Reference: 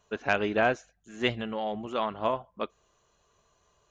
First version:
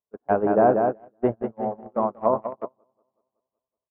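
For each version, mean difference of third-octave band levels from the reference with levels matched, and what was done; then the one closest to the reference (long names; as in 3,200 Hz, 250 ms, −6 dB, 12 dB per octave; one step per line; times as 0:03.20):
10.5 dB: low-pass filter 1,000 Hz 24 dB per octave
low-shelf EQ 80 Hz −11 dB
on a send: repeating echo 187 ms, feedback 57%, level −4.5 dB
on the sum: noise gate −29 dBFS, range −35 dB
level +8 dB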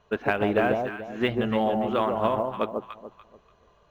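6.0 dB: downward compressor 16 to 1, threshold −26 dBFS, peak gain reduction 8 dB
high-frequency loss of the air 240 metres
delay that swaps between a low-pass and a high-pass 145 ms, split 940 Hz, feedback 52%, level −2.5 dB
level +7.5 dB
IMA ADPCM 176 kbit/s 44,100 Hz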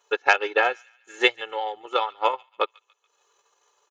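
8.0 dB: transient designer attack +9 dB, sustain −11 dB
high-pass filter 600 Hz 12 dB per octave
comb filter 2.3 ms, depth 86%
delay with a high-pass on its return 142 ms, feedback 41%, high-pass 2,000 Hz, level −22.5 dB
level +2.5 dB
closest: second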